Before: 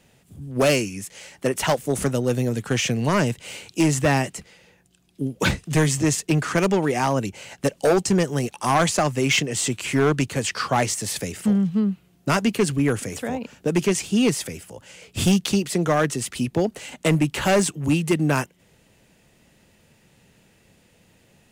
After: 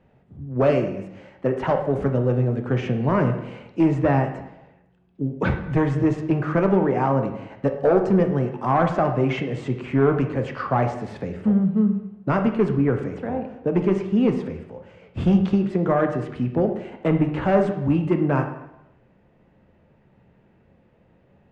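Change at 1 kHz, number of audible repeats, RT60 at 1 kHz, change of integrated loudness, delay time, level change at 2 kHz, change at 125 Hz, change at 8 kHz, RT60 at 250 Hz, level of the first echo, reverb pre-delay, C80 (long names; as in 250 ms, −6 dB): 0.0 dB, no echo audible, 0.90 s, 0.0 dB, no echo audible, −6.0 dB, +1.0 dB, below −30 dB, 0.85 s, no echo audible, 7 ms, 10.5 dB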